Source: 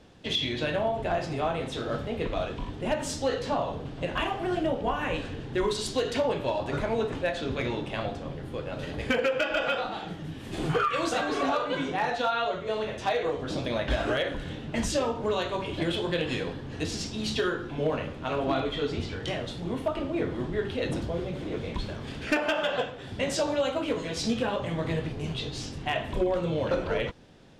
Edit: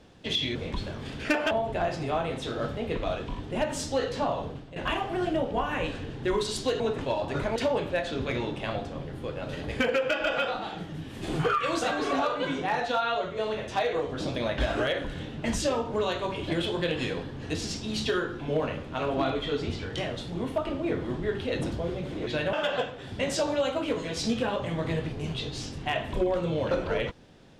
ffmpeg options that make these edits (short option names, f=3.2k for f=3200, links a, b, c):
-filter_complex "[0:a]asplit=10[a][b][c][d][e][f][g][h][i][j];[a]atrim=end=0.552[k];[b]atrim=start=21.568:end=22.532[l];[c]atrim=start=0.808:end=4.06,asetpts=PTS-STARTPTS,afade=t=out:st=2.972:d=0.28:silence=0.141254[m];[d]atrim=start=4.06:end=6.102,asetpts=PTS-STARTPTS,afade=t=in:d=0.004:c=hsin:silence=0.141254[n];[e]atrim=start=6.938:end=7.202[o];[f]atrim=start=6.438:end=6.942[p];[g]atrim=start=6.098:end=6.442[q];[h]atrim=start=7.198:end=21.572[r];[i]atrim=start=0.548:end=0.812[s];[j]atrim=start=22.528[t];[k][l]acrossfade=d=0.004:c1=hsin:c2=hsin[u];[m][n]concat=n=2:v=0:a=1[v];[u][v]acrossfade=d=0.004:c1=hsin:c2=hsin[w];[w][o]acrossfade=d=0.004:c1=hsin:c2=hsin[x];[x][p]acrossfade=d=0.004:c1=hsin:c2=hsin[y];[y][q]acrossfade=d=0.004:c1=hsin:c2=hsin[z];[z][r]acrossfade=d=0.004:c1=hsin:c2=hsin[aa];[aa][s]acrossfade=d=0.004:c1=hsin:c2=hsin[ab];[ab][t]acrossfade=d=0.004:c1=hsin:c2=hsin"